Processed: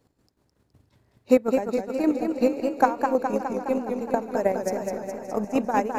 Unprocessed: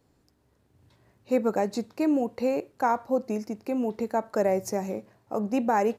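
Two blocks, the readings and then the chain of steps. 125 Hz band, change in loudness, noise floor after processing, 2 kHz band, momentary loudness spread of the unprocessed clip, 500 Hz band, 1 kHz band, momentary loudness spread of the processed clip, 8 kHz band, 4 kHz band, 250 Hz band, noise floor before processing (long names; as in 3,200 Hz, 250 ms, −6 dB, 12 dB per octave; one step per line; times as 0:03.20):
−0.5 dB, +3.0 dB, −69 dBFS, +3.0 dB, 7 LU, +3.0 dB, +2.5 dB, 7 LU, +0.5 dB, +1.0 dB, +2.5 dB, −67 dBFS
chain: transient designer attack +9 dB, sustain −5 dB
square-wave tremolo 5.4 Hz, depth 60%, duty 40%
on a send: feedback echo with a long and a short gap by turns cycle 762 ms, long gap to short 3 to 1, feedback 55%, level −19 dB
on the sum: feedback echo with a swinging delay time 208 ms, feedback 67%, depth 98 cents, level −5.5 dB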